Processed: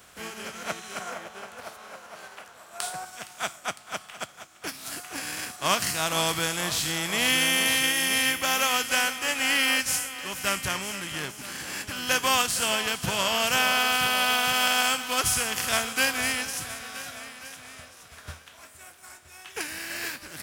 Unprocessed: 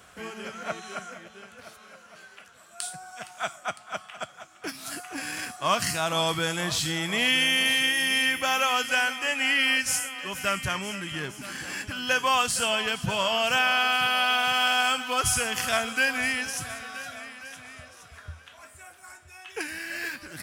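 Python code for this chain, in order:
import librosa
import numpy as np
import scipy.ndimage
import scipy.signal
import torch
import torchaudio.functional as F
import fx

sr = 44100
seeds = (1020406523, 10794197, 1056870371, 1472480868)

y = fx.spec_flatten(x, sr, power=0.62)
y = fx.peak_eq(y, sr, hz=790.0, db=10.5, octaves=2.0, at=(1.0, 3.05))
y = fx.quant_float(y, sr, bits=4, at=(13.48, 14.01))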